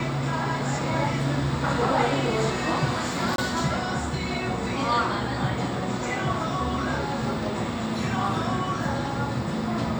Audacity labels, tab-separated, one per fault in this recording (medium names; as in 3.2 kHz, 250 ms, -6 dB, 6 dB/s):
3.360000	3.380000	dropout 22 ms